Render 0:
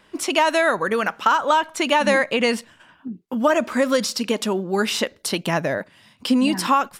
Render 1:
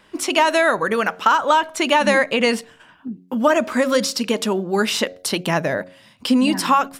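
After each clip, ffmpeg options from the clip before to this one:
-af "bandreject=f=91:t=h:w=4,bandreject=f=182:t=h:w=4,bandreject=f=273:t=h:w=4,bandreject=f=364:t=h:w=4,bandreject=f=455:t=h:w=4,bandreject=f=546:t=h:w=4,bandreject=f=637:t=h:w=4,bandreject=f=728:t=h:w=4,volume=2dB"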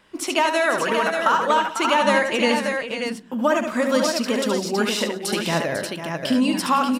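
-af "aecho=1:1:72|174|347|497|584:0.473|0.112|0.112|0.316|0.531,volume=-4dB"

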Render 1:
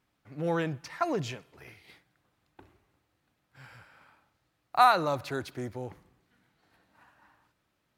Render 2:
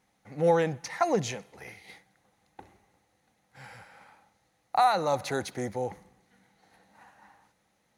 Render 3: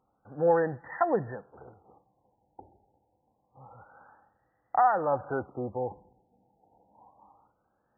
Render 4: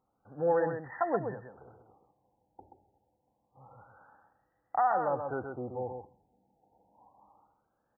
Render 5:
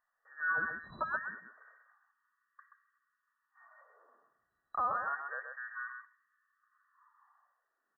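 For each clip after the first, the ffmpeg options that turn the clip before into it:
-af "equalizer=f=200:t=o:w=0.33:g=10,equalizer=f=500:t=o:w=0.33:g=9,equalizer=f=800:t=o:w=0.33:g=12,equalizer=f=2k:t=o:w=0.33:g=8,equalizer=f=4k:t=o:w=0.33:g=5,equalizer=f=6.3k:t=o:w=0.33:g=11,equalizer=f=10k:t=o:w=0.33:g=11,alimiter=limit=-13dB:level=0:latency=1:release=421"
-af "equalizer=f=180:t=o:w=0.49:g=-7,afftfilt=real='re*lt(b*sr/1024,930*pow(2000/930,0.5+0.5*sin(2*PI*0.27*pts/sr)))':imag='im*lt(b*sr/1024,930*pow(2000/930,0.5+0.5*sin(2*PI*0.27*pts/sr)))':win_size=1024:overlap=0.75"
-af "aecho=1:1:129:0.501,volume=-4.5dB"
-af "afftfilt=real='real(if(between(b,1,1012),(2*floor((b-1)/92)+1)*92-b,b),0)':imag='imag(if(between(b,1,1012),(2*floor((b-1)/92)+1)*92-b,b),0)*if(between(b,1,1012),-1,1)':win_size=2048:overlap=0.75,volume=-6dB"

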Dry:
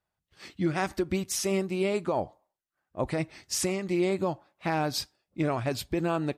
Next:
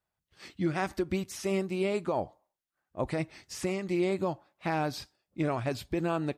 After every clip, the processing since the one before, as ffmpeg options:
-filter_complex "[0:a]acrossover=split=2900[a][b];[b]acompressor=threshold=-38dB:ratio=4:attack=1:release=60[c];[a][c]amix=inputs=2:normalize=0,volume=-2dB"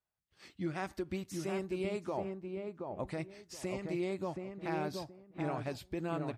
-filter_complex "[0:a]asplit=2[a][b];[b]adelay=725,lowpass=f=1.2k:p=1,volume=-3.5dB,asplit=2[c][d];[d]adelay=725,lowpass=f=1.2k:p=1,volume=0.24,asplit=2[e][f];[f]adelay=725,lowpass=f=1.2k:p=1,volume=0.24[g];[a][c][e][g]amix=inputs=4:normalize=0,volume=-7.5dB"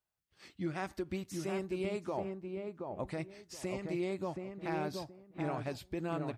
-af "asoftclip=type=hard:threshold=-25.5dB"

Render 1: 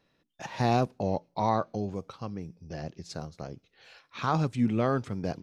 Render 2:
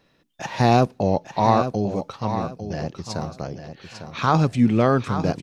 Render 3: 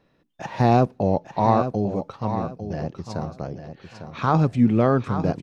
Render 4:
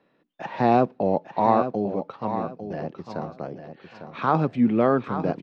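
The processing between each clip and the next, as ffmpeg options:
-af "aecho=1:1:851|1702|2553:0.335|0.0971|0.0282,volume=8.5dB"
-af "highshelf=f=2.2k:g=-10.5"
-filter_complex "[0:a]acrossover=split=170 4200:gain=0.126 1 0.0794[a][b][c];[a][b][c]amix=inputs=3:normalize=0"

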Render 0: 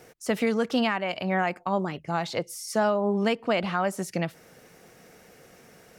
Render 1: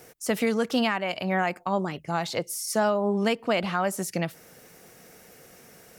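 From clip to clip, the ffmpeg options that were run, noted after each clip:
-af "highshelf=f=7.5k:g=10"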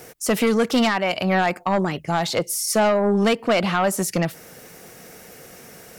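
-af "aeval=exprs='0.237*sin(PI/2*1.58*val(0)/0.237)':c=same"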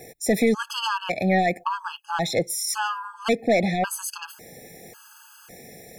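-af "afftfilt=real='re*gt(sin(2*PI*0.91*pts/sr)*(1-2*mod(floor(b*sr/1024/850),2)),0)':imag='im*gt(sin(2*PI*0.91*pts/sr)*(1-2*mod(floor(b*sr/1024/850),2)),0)':win_size=1024:overlap=0.75"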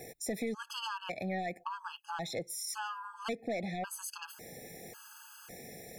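-af "acompressor=threshold=-40dB:ratio=2,volume=-3.5dB"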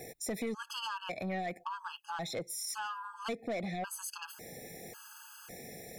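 -af "asoftclip=type=tanh:threshold=-29dB,volume=1dB"

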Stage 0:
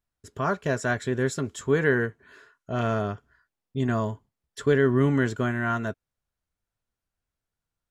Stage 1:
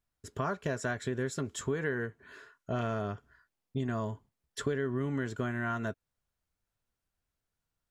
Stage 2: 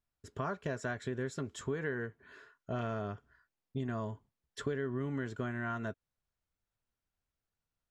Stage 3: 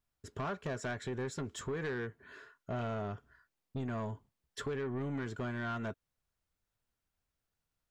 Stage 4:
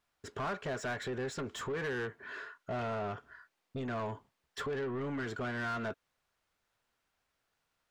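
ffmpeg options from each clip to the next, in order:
-af "acompressor=threshold=-30dB:ratio=5"
-af "highshelf=f=9.1k:g=-12,volume=-3.5dB"
-af "asoftclip=type=tanh:threshold=-34dB,volume=2.5dB"
-filter_complex "[0:a]asplit=2[a][b];[b]highpass=f=720:p=1,volume=17dB,asoftclip=type=tanh:threshold=-31.5dB[c];[a][c]amix=inputs=2:normalize=0,lowpass=f=2.7k:p=1,volume=-6dB,volume=1dB"

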